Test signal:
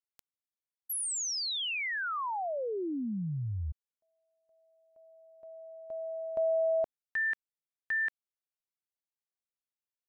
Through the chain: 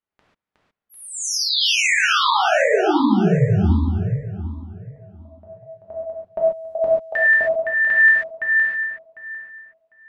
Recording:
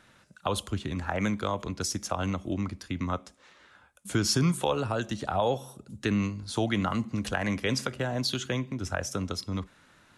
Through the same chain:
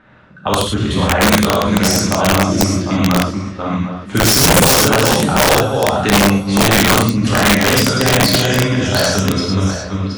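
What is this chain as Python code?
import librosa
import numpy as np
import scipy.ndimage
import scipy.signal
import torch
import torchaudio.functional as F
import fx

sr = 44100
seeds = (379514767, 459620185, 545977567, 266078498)

y = fx.reverse_delay_fb(x, sr, ms=375, feedback_pct=44, wet_db=-3.5)
y = fx.env_lowpass(y, sr, base_hz=1800.0, full_db=-23.0)
y = fx.rev_gated(y, sr, seeds[0], gate_ms=160, shape='flat', drr_db=-4.5)
y = (np.mod(10.0 ** (13.5 / 20.0) * y + 1.0, 2.0) - 1.0) / 10.0 ** (13.5 / 20.0)
y = y * 10.0 ** (9.0 / 20.0)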